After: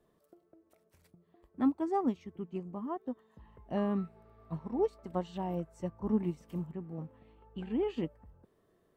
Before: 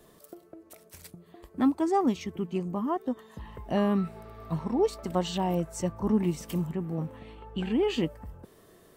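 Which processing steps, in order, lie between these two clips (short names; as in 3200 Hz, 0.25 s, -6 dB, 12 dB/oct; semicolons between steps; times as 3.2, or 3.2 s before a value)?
high shelf 3000 Hz -11.5 dB; upward expander 1.5:1, over -39 dBFS; gain -3.5 dB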